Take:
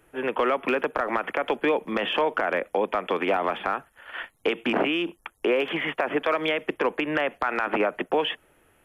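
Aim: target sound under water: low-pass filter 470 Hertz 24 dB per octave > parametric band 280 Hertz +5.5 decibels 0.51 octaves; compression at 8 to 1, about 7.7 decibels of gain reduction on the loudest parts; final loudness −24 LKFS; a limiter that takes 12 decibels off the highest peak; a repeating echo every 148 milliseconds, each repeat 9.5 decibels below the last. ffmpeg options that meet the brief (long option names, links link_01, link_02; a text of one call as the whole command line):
ffmpeg -i in.wav -af "acompressor=threshold=-27dB:ratio=8,alimiter=level_in=2.5dB:limit=-24dB:level=0:latency=1,volume=-2.5dB,lowpass=frequency=470:width=0.5412,lowpass=frequency=470:width=1.3066,equalizer=frequency=280:width_type=o:width=0.51:gain=5.5,aecho=1:1:148|296|444|592:0.335|0.111|0.0365|0.012,volume=15dB" out.wav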